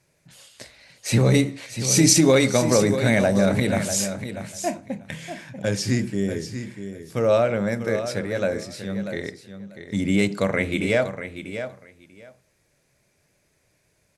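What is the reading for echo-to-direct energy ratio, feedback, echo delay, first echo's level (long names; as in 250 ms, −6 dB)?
−10.0 dB, 16%, 641 ms, −10.0 dB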